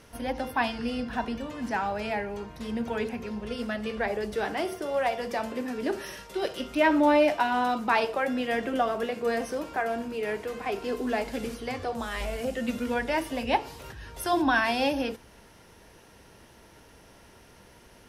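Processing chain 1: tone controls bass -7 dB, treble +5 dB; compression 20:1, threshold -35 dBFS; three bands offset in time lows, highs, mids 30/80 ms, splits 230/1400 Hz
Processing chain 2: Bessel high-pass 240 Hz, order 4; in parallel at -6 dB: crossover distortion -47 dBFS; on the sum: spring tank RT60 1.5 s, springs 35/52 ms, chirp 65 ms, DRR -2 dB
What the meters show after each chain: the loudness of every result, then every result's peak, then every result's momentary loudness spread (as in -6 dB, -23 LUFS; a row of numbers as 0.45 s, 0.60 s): -40.5 LUFS, -22.0 LUFS; -25.0 dBFS, -3.5 dBFS; 14 LU, 11 LU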